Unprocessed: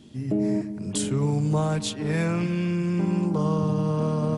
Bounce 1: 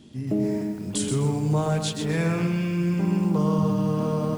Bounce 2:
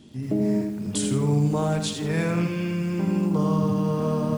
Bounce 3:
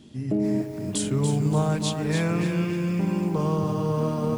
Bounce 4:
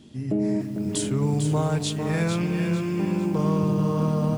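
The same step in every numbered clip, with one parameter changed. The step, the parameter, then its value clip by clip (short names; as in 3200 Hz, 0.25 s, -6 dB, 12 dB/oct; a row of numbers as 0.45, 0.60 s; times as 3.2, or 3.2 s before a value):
lo-fi delay, time: 127, 82, 288, 449 ms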